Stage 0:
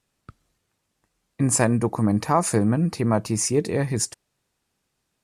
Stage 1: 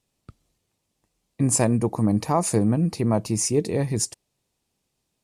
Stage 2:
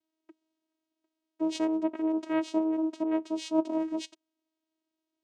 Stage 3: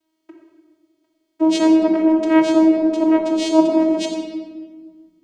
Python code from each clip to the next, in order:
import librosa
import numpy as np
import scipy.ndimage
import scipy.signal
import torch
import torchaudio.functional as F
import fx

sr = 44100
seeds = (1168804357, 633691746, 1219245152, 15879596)

y1 = fx.peak_eq(x, sr, hz=1500.0, db=-9.0, octaves=0.88)
y2 = fx.vocoder(y1, sr, bands=4, carrier='saw', carrier_hz=318.0)
y2 = y2 * 10.0 ** (-6.5 / 20.0)
y3 = fx.room_shoebox(y2, sr, seeds[0], volume_m3=1500.0, walls='mixed', distance_m=2.8)
y3 = y3 * 10.0 ** (8.0 / 20.0)